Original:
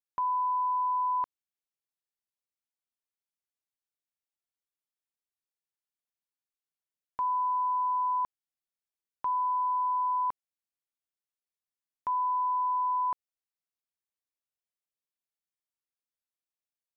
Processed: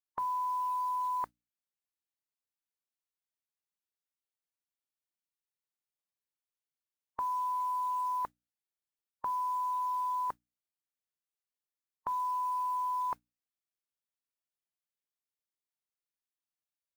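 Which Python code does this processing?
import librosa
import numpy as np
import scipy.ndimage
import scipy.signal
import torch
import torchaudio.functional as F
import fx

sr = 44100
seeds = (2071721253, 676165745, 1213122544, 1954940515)

y = fx.hum_notches(x, sr, base_hz=60, count=5)
y = fx.mod_noise(y, sr, seeds[0], snr_db=28)
y = fx.noise_reduce_blind(y, sr, reduce_db=8)
y = y * 10.0 ** (3.5 / 20.0)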